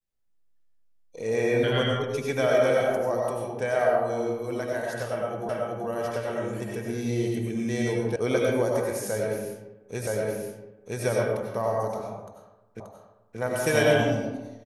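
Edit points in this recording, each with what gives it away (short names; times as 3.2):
5.49 repeat of the last 0.38 s
8.16 sound cut off
10.07 repeat of the last 0.97 s
12.8 repeat of the last 0.58 s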